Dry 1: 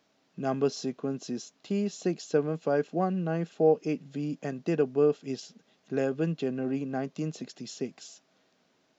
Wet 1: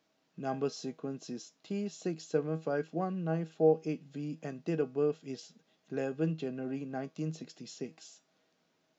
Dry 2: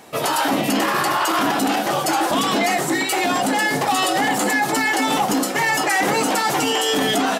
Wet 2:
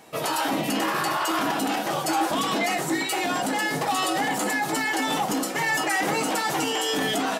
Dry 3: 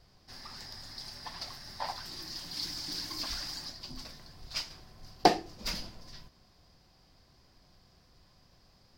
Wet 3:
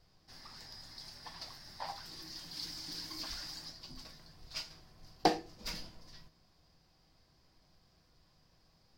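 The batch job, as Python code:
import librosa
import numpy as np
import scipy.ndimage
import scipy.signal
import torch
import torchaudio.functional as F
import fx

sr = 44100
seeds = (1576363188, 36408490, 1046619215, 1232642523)

y = fx.comb_fb(x, sr, f0_hz=160.0, decay_s=0.23, harmonics='all', damping=0.0, mix_pct=60)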